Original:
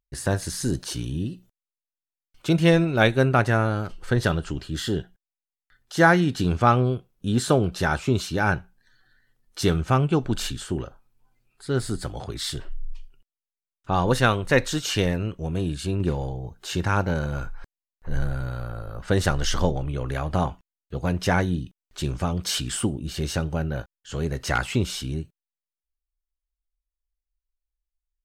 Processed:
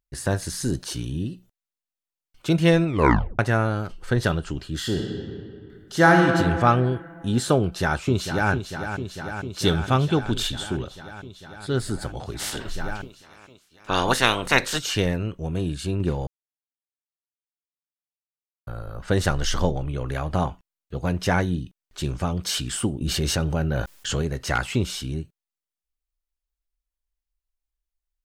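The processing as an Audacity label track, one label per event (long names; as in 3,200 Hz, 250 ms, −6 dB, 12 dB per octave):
2.870000	2.870000	tape stop 0.52 s
4.790000	6.270000	thrown reverb, RT60 2.3 s, DRR 1.5 dB
7.620000	8.510000	delay throw 450 ms, feedback 80%, level −8.5 dB
9.650000	11.770000	parametric band 3,500 Hz +10.5 dB 0.24 octaves
12.380000	14.770000	ceiling on every frequency bin ceiling under each frame's peak by 20 dB
16.270000	18.670000	silence
23.010000	24.220000	envelope flattener amount 70%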